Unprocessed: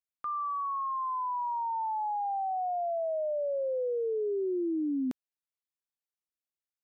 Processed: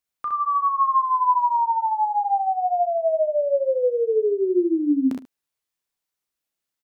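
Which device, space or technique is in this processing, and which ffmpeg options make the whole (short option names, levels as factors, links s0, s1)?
slapback doubling: -filter_complex "[0:a]asplit=3[s0][s1][s2];[s0]afade=t=out:st=0.52:d=0.02[s3];[s1]equalizer=f=430:t=o:w=2.4:g=6,afade=t=in:st=0.52:d=0.02,afade=t=out:st=1.58:d=0.02[s4];[s2]afade=t=in:st=1.58:d=0.02[s5];[s3][s4][s5]amix=inputs=3:normalize=0,asplit=3[s6][s7][s8];[s6]afade=t=out:st=2.19:d=0.02[s9];[s7]highpass=f=250:w=0.5412,highpass=f=250:w=1.3066,afade=t=in:st=2.19:d=0.02,afade=t=out:st=2.64:d=0.02[s10];[s8]afade=t=in:st=2.64:d=0.02[s11];[s9][s10][s11]amix=inputs=3:normalize=0,asplit=3[s12][s13][s14];[s13]adelay=34,volume=0.398[s15];[s14]adelay=64,volume=0.562[s16];[s12][s15][s16]amix=inputs=3:normalize=0,aecho=1:1:14|75:0.141|0.178,volume=2.51"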